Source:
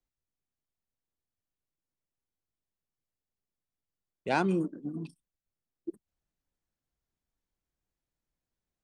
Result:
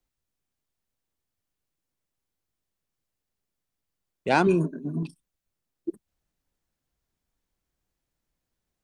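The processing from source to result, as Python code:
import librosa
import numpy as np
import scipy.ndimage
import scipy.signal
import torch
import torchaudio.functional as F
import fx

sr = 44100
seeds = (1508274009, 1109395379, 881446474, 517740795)

y = fx.ripple_eq(x, sr, per_octave=1.5, db=13, at=(4.46, 5.03))
y = y * librosa.db_to_amplitude(6.5)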